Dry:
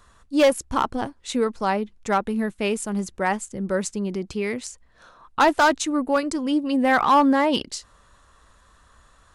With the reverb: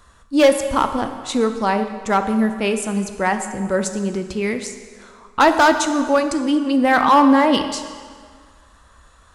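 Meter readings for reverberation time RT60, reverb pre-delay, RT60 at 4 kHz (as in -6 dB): 1.8 s, 3 ms, 1.5 s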